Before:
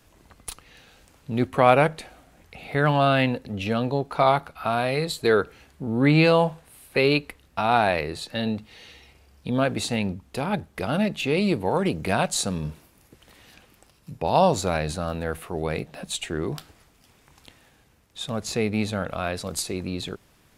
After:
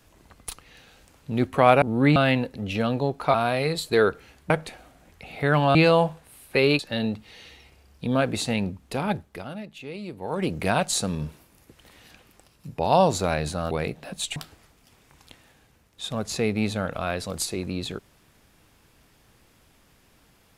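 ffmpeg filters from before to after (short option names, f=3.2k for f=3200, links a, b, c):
-filter_complex "[0:a]asplit=11[a][b][c][d][e][f][g][h][i][j][k];[a]atrim=end=1.822[l];[b]atrim=start=5.818:end=6.162[m];[c]atrim=start=3.068:end=4.252[n];[d]atrim=start=4.658:end=5.822[o];[e]atrim=start=1.818:end=3.072[p];[f]atrim=start=6.158:end=7.202[q];[g]atrim=start=8.218:end=11.06,asetpts=PTS-STARTPTS,afade=t=out:st=2.372:d=0.47:c=qua:silence=0.199526[r];[h]atrim=start=11.06:end=11.47,asetpts=PTS-STARTPTS,volume=-14dB[s];[i]atrim=start=11.47:end=15.142,asetpts=PTS-STARTPTS,afade=t=in:d=0.47:c=qua:silence=0.199526[t];[j]atrim=start=15.618:end=16.272[u];[k]atrim=start=16.528[v];[l][m]acrossfade=d=0.004:c1=hsin:c2=hsin[w];[w][n]acrossfade=d=0.004:c1=hsin:c2=hsin[x];[x][o]acrossfade=d=0.004:c1=hsin:c2=hsin[y];[y][p]acrossfade=d=0.004:c1=hsin:c2=hsin[z];[z][q]acrossfade=d=0.004:c1=hsin:c2=hsin[aa];[r][s][t]concat=n=3:v=0:a=1[ab];[aa][ab]acrossfade=d=0.004:c1=hsin:c2=hsin[ac];[ac][u]acrossfade=d=0.004:c1=hsin:c2=hsin[ad];[ad][v]acrossfade=d=0.004:c1=hsin:c2=hsin"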